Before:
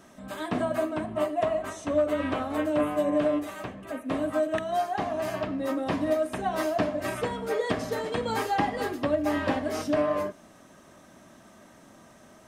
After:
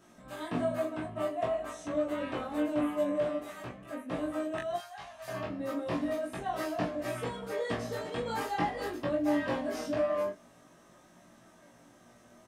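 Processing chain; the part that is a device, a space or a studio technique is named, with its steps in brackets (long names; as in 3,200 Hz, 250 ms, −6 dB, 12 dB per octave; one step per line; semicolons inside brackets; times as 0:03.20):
0:04.76–0:05.28: guitar amp tone stack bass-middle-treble 10-0-10
double-tracked vocal (double-tracking delay 17 ms −2 dB; chorus effect 0.45 Hz, depth 2.9 ms)
level −4.5 dB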